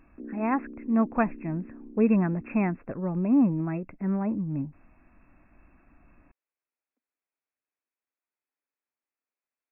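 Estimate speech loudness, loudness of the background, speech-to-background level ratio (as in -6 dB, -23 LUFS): -27.5 LUFS, -45.0 LUFS, 17.5 dB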